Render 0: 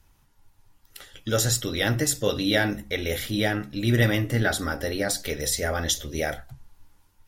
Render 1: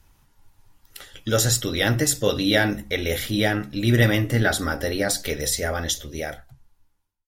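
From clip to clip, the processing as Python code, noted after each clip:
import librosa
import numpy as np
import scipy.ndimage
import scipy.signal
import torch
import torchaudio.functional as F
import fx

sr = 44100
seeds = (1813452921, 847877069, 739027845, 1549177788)

y = fx.fade_out_tail(x, sr, length_s=2.0)
y = y * librosa.db_to_amplitude(3.0)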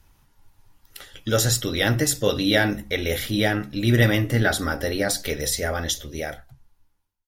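y = fx.peak_eq(x, sr, hz=7700.0, db=-2.5, octaves=0.41)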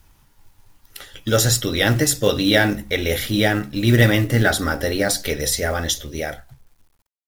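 y = fx.quant_companded(x, sr, bits=6)
y = y * librosa.db_to_amplitude(3.5)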